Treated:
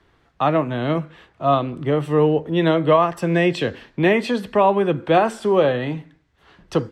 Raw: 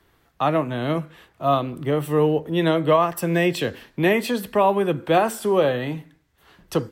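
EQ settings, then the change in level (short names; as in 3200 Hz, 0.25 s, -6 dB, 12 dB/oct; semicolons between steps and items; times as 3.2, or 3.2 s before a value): air absorption 86 m; +2.5 dB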